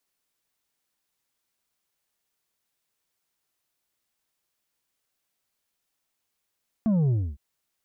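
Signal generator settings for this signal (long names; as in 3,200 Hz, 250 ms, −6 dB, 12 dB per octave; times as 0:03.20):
bass drop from 230 Hz, over 0.51 s, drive 5.5 dB, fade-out 0.27 s, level −20 dB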